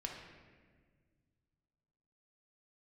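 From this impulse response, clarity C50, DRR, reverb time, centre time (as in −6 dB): 3.0 dB, 0.0 dB, 1.6 s, 56 ms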